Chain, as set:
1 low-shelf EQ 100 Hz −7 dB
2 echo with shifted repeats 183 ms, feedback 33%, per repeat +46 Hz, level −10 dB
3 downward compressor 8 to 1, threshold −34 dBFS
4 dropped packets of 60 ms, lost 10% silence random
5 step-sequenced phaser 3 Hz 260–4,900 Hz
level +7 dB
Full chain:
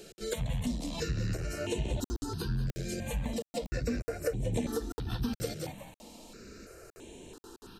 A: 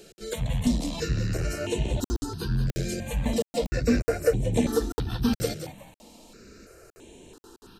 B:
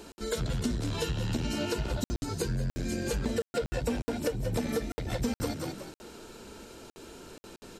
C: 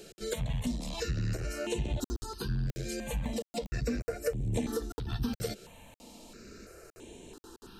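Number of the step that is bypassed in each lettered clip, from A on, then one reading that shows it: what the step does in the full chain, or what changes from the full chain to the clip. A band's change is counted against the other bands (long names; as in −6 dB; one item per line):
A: 3, average gain reduction 4.5 dB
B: 5, 125 Hz band −2.0 dB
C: 2, change in momentary loudness spread +1 LU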